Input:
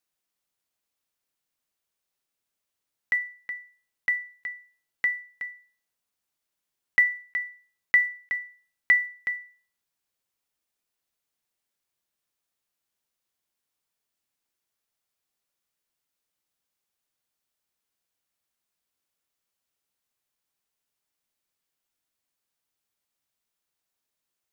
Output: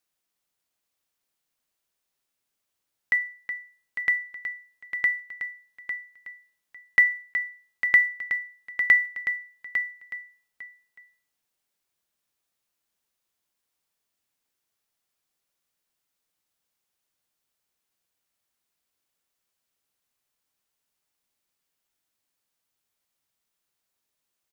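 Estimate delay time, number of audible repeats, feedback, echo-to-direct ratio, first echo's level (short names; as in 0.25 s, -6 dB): 0.852 s, 2, 16%, -9.0 dB, -9.0 dB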